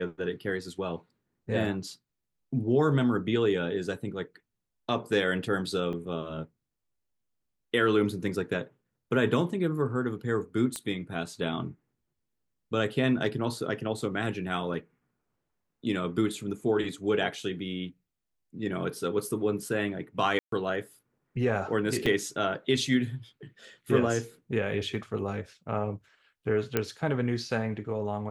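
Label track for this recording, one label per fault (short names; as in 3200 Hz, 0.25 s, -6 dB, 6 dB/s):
5.930000	5.930000	gap 3.8 ms
10.760000	10.760000	pop -18 dBFS
20.390000	20.520000	gap 0.133 s
22.060000	22.060000	gap 3.7 ms
26.770000	26.770000	pop -11 dBFS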